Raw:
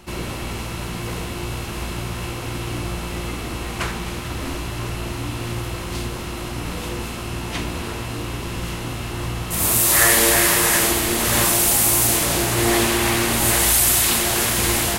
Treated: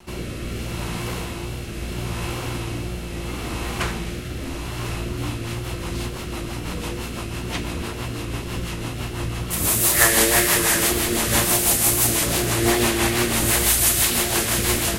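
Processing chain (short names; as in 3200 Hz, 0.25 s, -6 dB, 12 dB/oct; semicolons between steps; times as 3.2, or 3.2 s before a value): rotary speaker horn 0.75 Hz, later 6 Hz, at 4.73; wow and flutter 41 cents; gain +1 dB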